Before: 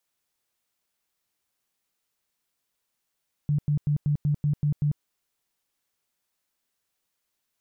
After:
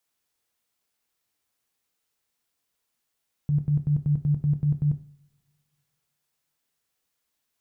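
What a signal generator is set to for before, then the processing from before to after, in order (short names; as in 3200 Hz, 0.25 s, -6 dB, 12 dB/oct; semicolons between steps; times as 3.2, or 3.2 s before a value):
tone bursts 147 Hz, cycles 14, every 0.19 s, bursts 8, -20 dBFS
two-slope reverb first 0.44 s, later 2.1 s, from -26 dB, DRR 8.5 dB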